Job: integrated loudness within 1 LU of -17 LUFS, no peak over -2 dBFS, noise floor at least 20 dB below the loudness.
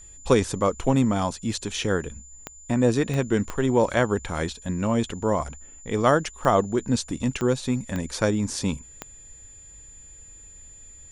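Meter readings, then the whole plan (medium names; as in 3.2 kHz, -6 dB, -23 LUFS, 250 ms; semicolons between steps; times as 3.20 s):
clicks found 7; steady tone 7.1 kHz; tone level -45 dBFS; loudness -24.5 LUFS; peak level -5.0 dBFS; loudness target -17.0 LUFS
-> de-click; band-stop 7.1 kHz, Q 30; trim +7.5 dB; peak limiter -2 dBFS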